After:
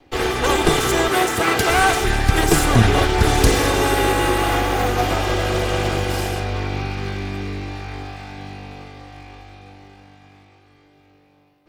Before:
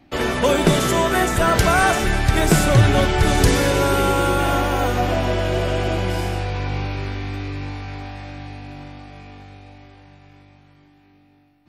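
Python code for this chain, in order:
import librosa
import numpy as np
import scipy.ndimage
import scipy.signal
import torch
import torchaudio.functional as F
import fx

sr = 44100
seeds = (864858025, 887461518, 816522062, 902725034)

y = fx.lower_of_two(x, sr, delay_ms=2.5)
y = fx.highpass(y, sr, hz=130.0, slope=12, at=(1.09, 1.7))
y = fx.high_shelf(y, sr, hz=4600.0, db=5.5, at=(4.98, 6.4))
y = y * 10.0 ** (2.0 / 20.0)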